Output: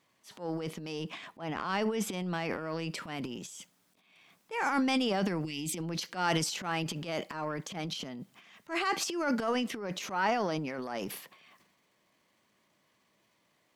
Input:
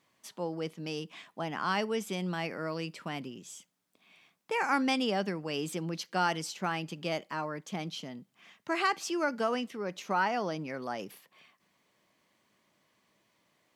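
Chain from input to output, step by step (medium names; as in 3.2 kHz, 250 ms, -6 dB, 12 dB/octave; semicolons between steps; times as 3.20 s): 0.92–2.94 s: treble shelf 4.5 kHz -6 dB; 5.44–5.78 s: time-frequency box 370–1900 Hz -18 dB; transient shaper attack -11 dB, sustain +11 dB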